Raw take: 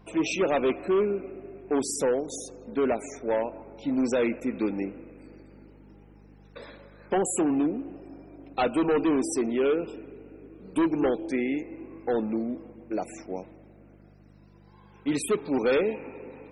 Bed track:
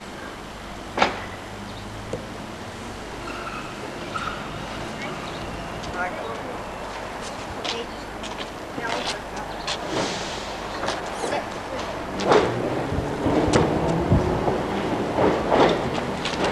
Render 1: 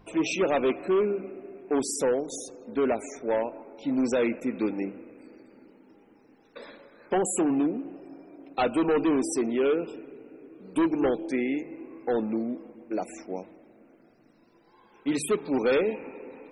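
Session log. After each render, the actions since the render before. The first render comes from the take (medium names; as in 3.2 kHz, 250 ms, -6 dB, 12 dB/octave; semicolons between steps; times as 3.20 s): de-hum 50 Hz, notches 4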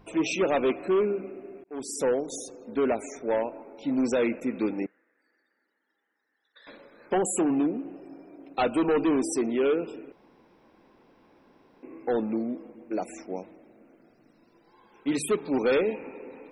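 1.64–2.08 s: fade in; 4.86–6.67 s: two resonant band-passes 2.5 kHz, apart 1 oct; 10.12–11.83 s: room tone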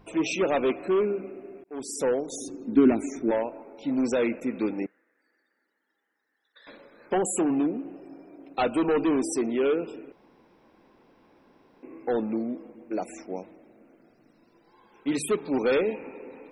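2.40–3.31 s: resonant low shelf 400 Hz +7 dB, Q 3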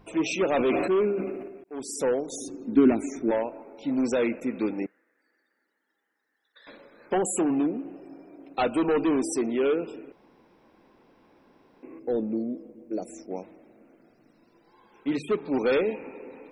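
0.50–1.48 s: decay stretcher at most 37 dB/s; 11.99–13.31 s: high-order bell 1.6 kHz -12 dB 2.4 oct; 15.07–15.52 s: distance through air 160 m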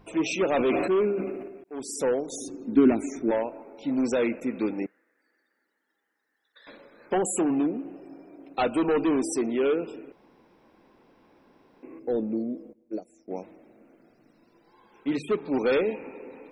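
12.73–13.28 s: upward expansion 2.5:1, over -38 dBFS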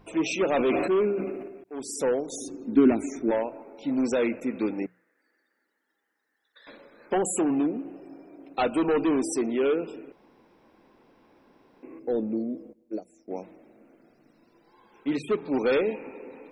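hum notches 60/120/180 Hz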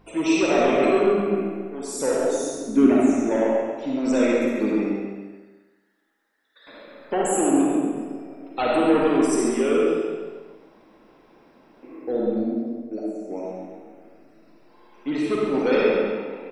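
feedback delay 136 ms, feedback 44%, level -8 dB; algorithmic reverb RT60 1.2 s, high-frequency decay 0.85×, pre-delay 15 ms, DRR -3.5 dB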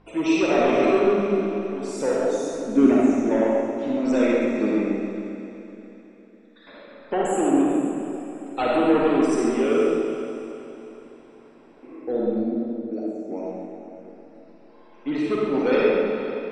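distance through air 81 m; on a send: echo that smears into a reverb 452 ms, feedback 41%, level -11.5 dB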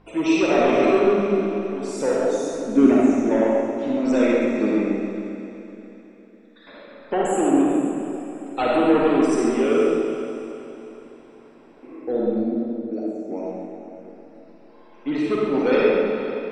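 trim +1.5 dB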